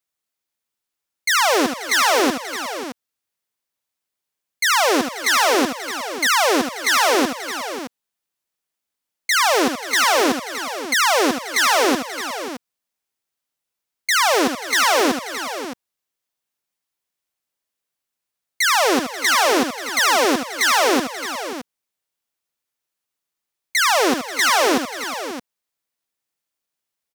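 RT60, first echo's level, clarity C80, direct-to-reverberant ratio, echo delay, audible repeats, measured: no reverb, -8.0 dB, no reverb, no reverb, 74 ms, 5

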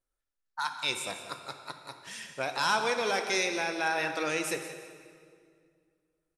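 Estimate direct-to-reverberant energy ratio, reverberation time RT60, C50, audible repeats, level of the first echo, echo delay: 5.5 dB, 2.1 s, 7.0 dB, 1, -13.5 dB, 176 ms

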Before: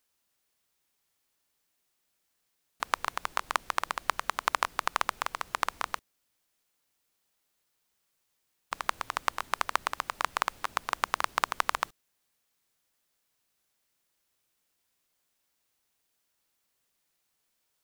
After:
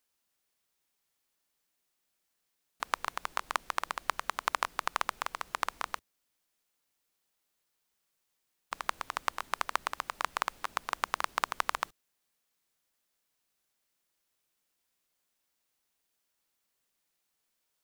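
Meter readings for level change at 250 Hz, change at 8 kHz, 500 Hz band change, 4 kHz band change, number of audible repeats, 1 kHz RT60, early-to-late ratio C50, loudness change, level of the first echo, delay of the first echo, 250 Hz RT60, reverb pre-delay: -3.0 dB, -3.0 dB, -3.0 dB, -3.0 dB, no echo, no reverb, no reverb, -3.0 dB, no echo, no echo, no reverb, no reverb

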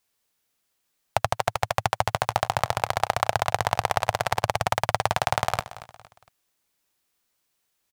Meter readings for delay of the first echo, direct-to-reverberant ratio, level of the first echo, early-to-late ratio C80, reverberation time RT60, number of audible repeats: 230 ms, no reverb, -16.0 dB, no reverb, no reverb, 3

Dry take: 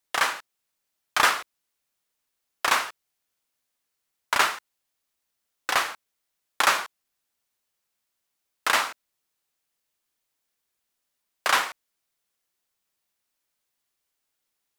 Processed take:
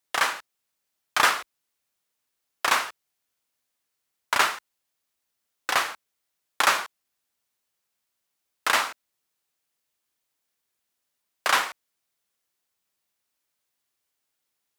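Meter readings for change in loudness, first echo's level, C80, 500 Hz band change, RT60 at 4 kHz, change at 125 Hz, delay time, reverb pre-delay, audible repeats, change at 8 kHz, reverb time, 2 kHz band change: 0.0 dB, no echo, no reverb, 0.0 dB, no reverb, no reading, no echo, no reverb, no echo, 0.0 dB, no reverb, 0.0 dB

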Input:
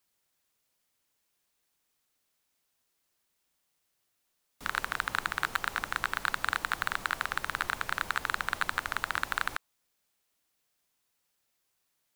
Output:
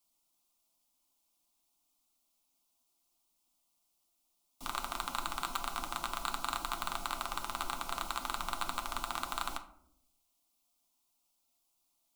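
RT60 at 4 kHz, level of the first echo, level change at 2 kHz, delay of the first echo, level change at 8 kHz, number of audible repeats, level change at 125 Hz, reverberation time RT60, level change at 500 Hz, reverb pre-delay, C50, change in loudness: 0.35 s, no echo, -13.0 dB, no echo, +0.5 dB, no echo, -5.0 dB, 0.75 s, -1.5 dB, 6 ms, 13.0 dB, -5.5 dB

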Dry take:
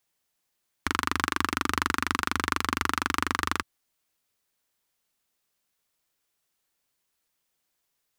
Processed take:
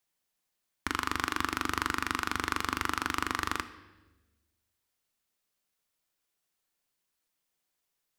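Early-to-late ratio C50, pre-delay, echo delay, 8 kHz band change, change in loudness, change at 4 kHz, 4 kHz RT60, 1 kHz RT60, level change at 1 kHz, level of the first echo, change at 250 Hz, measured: 13.5 dB, 3 ms, no echo, -4.0 dB, -4.0 dB, -4.0 dB, 1.0 s, 1.0 s, -4.0 dB, no echo, -4.5 dB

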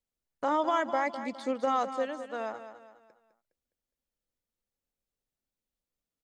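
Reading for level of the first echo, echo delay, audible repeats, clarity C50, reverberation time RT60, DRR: -11.0 dB, 206 ms, 4, no reverb, no reverb, no reverb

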